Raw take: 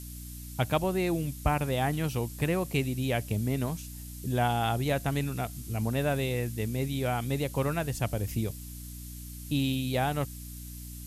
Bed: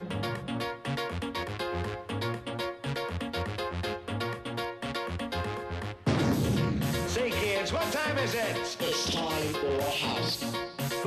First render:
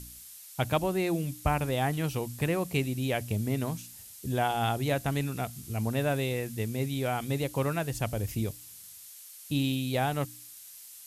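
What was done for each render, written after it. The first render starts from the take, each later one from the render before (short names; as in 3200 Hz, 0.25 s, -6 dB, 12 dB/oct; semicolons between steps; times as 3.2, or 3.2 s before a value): de-hum 60 Hz, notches 5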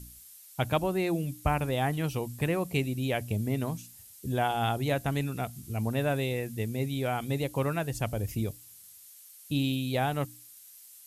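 denoiser 6 dB, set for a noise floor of -49 dBFS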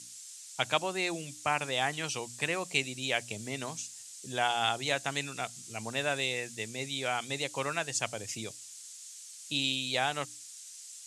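elliptic band-pass 110–7400 Hz, stop band 40 dB; tilt +4.5 dB/oct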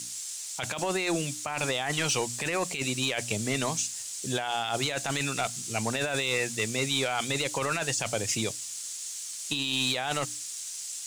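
negative-ratio compressor -35 dBFS, ratio -1; sample leveller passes 2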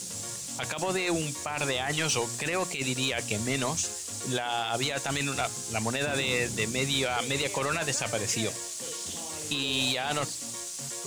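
add bed -12 dB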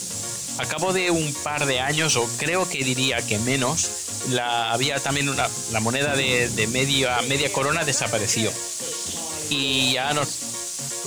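gain +7 dB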